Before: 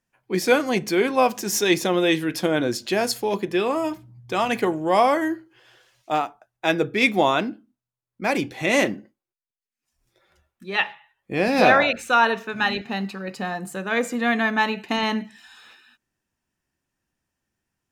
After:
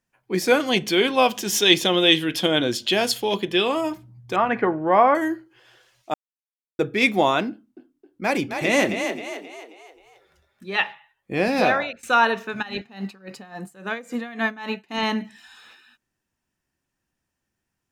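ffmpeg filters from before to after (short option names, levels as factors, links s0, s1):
-filter_complex "[0:a]asettb=1/sr,asplit=3[s0][s1][s2];[s0]atrim=end=0.604[s3];[s1]atrim=start=0.6:end=3.81,asetpts=PTS-STARTPTS,afade=t=in:d=0.004:c=qsin,afade=t=out:st=3.206:d=0.004:c=qsin,equalizer=f=3200:w=2.9:g=14[s4];[s2]atrim=start=3.806[s5];[s3][s4]acrossfade=d=0.004:c1=hsin:c2=qsin[s6];[s6][s5]acrossfade=d=0.004:c1=qsin:c2=hsin,asettb=1/sr,asplit=3[s7][s8][s9];[s7]atrim=end=4.364[s10];[s8]atrim=start=4.36:end=5.15,asetpts=PTS-STARTPTS,afade=t=in:d=0.004:c=qsin,afade=t=out:st=0.786:d=0.004:c=qsin,lowpass=f=1600:t=q:w=1.7[s11];[s9]atrim=start=5.146[s12];[s10][s11]acrossfade=d=0.004:c1=hsin:c2=qsin[s13];[s13][s12]acrossfade=d=0.004:c1=qsin:c2=hsin,asettb=1/sr,asplit=3[s14][s15][s16];[s14]atrim=end=7.504[s17];[s15]atrim=start=7.5:end=10.71,asetpts=PTS-STARTPTS,afade=t=in:d=0.004:c=qsin,afade=t=out:st=3.206:d=0.004:c=qsin,asplit=6[s18][s19][s20][s21][s22][s23];[s19]adelay=266,afreqshift=37,volume=0.447[s24];[s20]adelay=532,afreqshift=74,volume=0.197[s25];[s21]adelay=798,afreqshift=111,volume=0.0861[s26];[s22]adelay=1064,afreqshift=148,volume=0.038[s27];[s23]adelay=1330,afreqshift=185,volume=0.0168[s28];[s18][s24][s25][s26][s27][s28]amix=inputs=6:normalize=0,atrim=end_sample=141561[s29];[s16]atrim=start=10.706[s30];[s17][s29]acrossfade=d=0.004:c1=hsin:c2=qsin[s31];[s31][s30]acrossfade=d=0.004:c1=qsin:c2=hsin,asplit=3[s32][s33][s34];[s32]afade=t=out:st=12.61:d=0.02[s35];[s33]aeval=exprs='val(0)*pow(10,-19*(0.5-0.5*cos(2*PI*3.6*n/s))/20)':c=same,afade=t=in:st=12.61:d=0.02,afade=t=out:st=14.98:d=0.02[s36];[s34]afade=t=in:st=14.98:d=0.02[s37];[s35][s36][s37]amix=inputs=3:normalize=0,asplit=4[s38][s39][s40][s41];[s38]atrim=end=6.14,asetpts=PTS-STARTPTS,afade=t=out:st=6.136:d=0.004:c=hsin[s42];[s39]atrim=start=6.14:end=6.79,asetpts=PTS-STARTPTS,volume=0[s43];[s40]atrim=start=6.79:end=12.03,asetpts=PTS-STARTPTS,afade=t=in:d=0.004:c=hsin,afade=t=out:st=4.64:d=0.6:silence=0.105925[s44];[s41]atrim=start=12.03,asetpts=PTS-STARTPTS,afade=t=in:d=0.004:c=hsin:silence=0.105925[s45];[s42][s43][s44][s45]concat=n=4:v=0:a=1"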